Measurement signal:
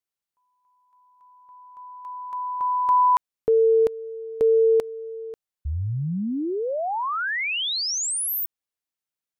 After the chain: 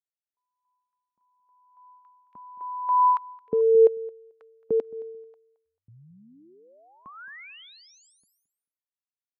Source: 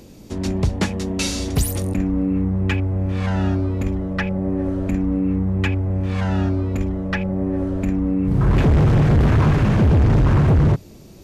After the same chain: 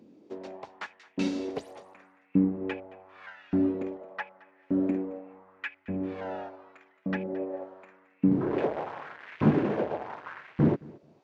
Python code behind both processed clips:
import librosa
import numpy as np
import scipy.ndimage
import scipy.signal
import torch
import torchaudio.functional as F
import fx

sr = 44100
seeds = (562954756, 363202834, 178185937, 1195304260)

y = fx.dynamic_eq(x, sr, hz=1200.0, q=5.2, threshold_db=-45.0, ratio=4.0, max_db=-4)
y = fx.filter_lfo_highpass(y, sr, shape='saw_up', hz=0.85, low_hz=210.0, high_hz=2500.0, q=2.2)
y = fx.spacing_loss(y, sr, db_at_10k=27)
y = fx.echo_feedback(y, sr, ms=220, feedback_pct=25, wet_db=-16.0)
y = fx.upward_expand(y, sr, threshold_db=-37.0, expansion=1.5)
y = y * librosa.db_to_amplitude(-2.0)